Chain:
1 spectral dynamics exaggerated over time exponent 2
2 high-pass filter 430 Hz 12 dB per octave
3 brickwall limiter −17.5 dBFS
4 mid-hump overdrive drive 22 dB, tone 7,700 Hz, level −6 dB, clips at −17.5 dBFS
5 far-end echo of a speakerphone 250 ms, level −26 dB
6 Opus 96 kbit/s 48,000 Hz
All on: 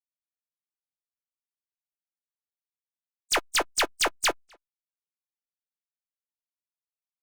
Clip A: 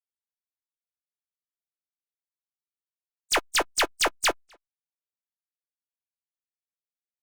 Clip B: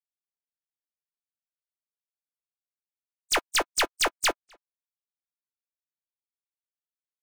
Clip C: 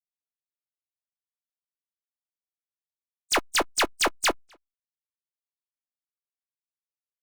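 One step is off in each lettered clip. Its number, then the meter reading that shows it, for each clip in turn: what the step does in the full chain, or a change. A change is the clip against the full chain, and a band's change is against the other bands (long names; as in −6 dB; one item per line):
3, average gain reduction 2.0 dB
6, change in crest factor −1.5 dB
2, 250 Hz band +4.5 dB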